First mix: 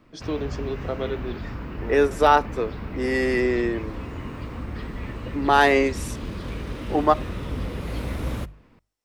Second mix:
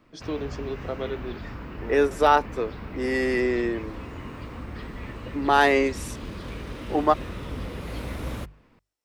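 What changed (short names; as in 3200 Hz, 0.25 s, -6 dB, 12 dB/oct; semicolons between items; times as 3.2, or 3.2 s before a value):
background: add low shelf 330 Hz -3.5 dB; reverb: off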